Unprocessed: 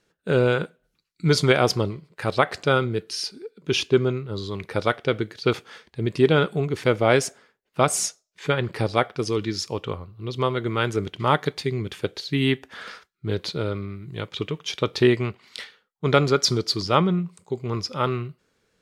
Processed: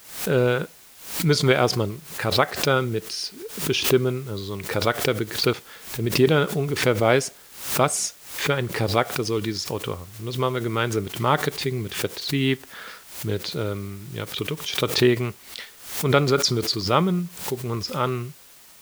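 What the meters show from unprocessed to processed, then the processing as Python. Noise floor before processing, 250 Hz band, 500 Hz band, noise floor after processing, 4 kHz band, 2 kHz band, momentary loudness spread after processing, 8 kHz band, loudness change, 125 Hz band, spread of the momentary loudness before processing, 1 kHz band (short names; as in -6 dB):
-75 dBFS, 0.0 dB, 0.0 dB, -49 dBFS, +2.0 dB, +0.5 dB, 13 LU, +2.5 dB, +0.5 dB, 0.0 dB, 13 LU, 0.0 dB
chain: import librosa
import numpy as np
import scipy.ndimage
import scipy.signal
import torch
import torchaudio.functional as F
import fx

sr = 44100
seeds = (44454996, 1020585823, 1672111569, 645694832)

p1 = fx.quant_dither(x, sr, seeds[0], bits=6, dither='triangular')
p2 = x + F.gain(torch.from_numpy(p1), -10.0).numpy()
p3 = fx.pre_swell(p2, sr, db_per_s=100.0)
y = F.gain(torch.from_numpy(p3), -3.0).numpy()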